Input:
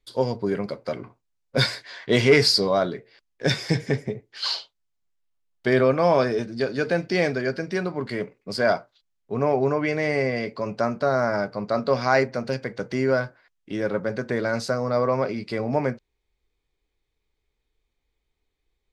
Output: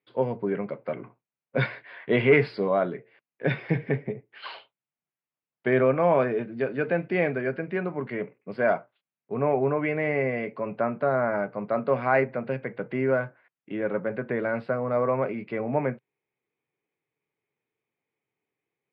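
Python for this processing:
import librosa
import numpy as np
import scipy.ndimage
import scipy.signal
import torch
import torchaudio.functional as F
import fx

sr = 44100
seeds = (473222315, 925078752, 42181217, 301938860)

y = scipy.signal.sosfilt(scipy.signal.ellip(3, 1.0, 40, [130.0, 2600.0], 'bandpass', fs=sr, output='sos'), x)
y = y * 10.0 ** (-2.0 / 20.0)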